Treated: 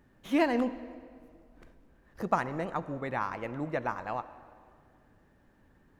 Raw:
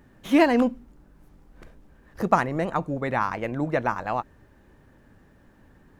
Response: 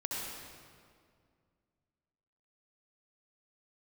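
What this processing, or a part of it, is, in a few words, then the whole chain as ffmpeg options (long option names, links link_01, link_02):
filtered reverb send: -filter_complex "[0:a]asplit=2[link_01][link_02];[link_02]highpass=260,lowpass=6700[link_03];[1:a]atrim=start_sample=2205[link_04];[link_03][link_04]afir=irnorm=-1:irlink=0,volume=-15.5dB[link_05];[link_01][link_05]amix=inputs=2:normalize=0,volume=-8.5dB"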